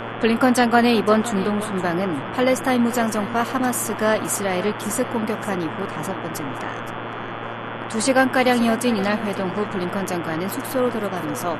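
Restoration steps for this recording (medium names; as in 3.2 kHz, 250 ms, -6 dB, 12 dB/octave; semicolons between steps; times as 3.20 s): de-hum 115.6 Hz, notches 30; noise print and reduce 30 dB; inverse comb 518 ms -15.5 dB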